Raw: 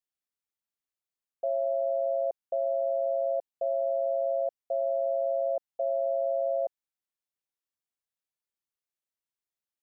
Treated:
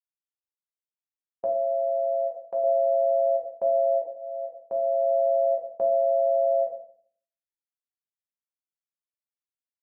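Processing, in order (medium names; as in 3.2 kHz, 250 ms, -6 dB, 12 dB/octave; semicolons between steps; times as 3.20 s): gate with hold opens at -23 dBFS; 1.46–2.64 s: bass shelf 390 Hz -11.5 dB; 4.02–5.14 s: fade in; reverberation RT60 0.55 s, pre-delay 5 ms, DRR 1.5 dB; endings held to a fixed fall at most 210 dB/s; trim +2.5 dB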